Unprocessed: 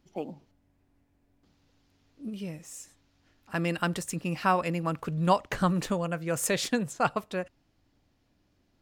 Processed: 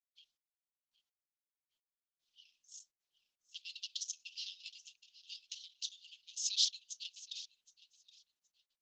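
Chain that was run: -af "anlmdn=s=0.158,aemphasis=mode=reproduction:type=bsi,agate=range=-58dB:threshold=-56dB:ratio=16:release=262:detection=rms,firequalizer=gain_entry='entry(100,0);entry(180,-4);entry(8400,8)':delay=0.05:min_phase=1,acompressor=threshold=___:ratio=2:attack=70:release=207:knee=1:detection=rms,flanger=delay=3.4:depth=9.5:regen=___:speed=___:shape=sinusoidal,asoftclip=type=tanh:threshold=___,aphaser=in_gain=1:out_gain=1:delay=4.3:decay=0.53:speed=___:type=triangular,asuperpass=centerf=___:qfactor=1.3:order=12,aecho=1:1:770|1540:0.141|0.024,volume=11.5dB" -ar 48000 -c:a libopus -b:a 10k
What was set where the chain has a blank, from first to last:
-30dB, 72, 0.6, -28.5dB, 1.2, 4500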